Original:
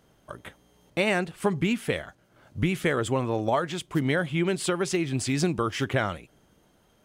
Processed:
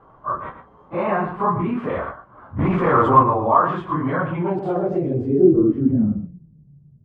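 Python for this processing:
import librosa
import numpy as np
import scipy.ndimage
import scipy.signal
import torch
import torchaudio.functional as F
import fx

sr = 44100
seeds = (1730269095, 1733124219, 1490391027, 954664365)

p1 = fx.phase_scramble(x, sr, seeds[0], window_ms=100)
p2 = fx.peak_eq(p1, sr, hz=6300.0, db=-7.5, octaves=0.24, at=(1.04, 1.77))
p3 = fx.over_compress(p2, sr, threshold_db=-32.0, ratio=-1.0)
p4 = p2 + (p3 * 10.0 ** (0.0 / 20.0))
p5 = fx.leveller(p4, sr, passes=2, at=(2.59, 3.23))
p6 = fx.dispersion(p5, sr, late='highs', ms=41.0, hz=1400.0, at=(4.59, 5.04))
p7 = p6 + fx.echo_single(p6, sr, ms=112, db=-10.5, dry=0)
p8 = fx.filter_sweep_lowpass(p7, sr, from_hz=1100.0, to_hz=140.0, start_s=4.26, end_s=6.6, q=7.3)
y = p8 * 10.0 ** (-1.0 / 20.0)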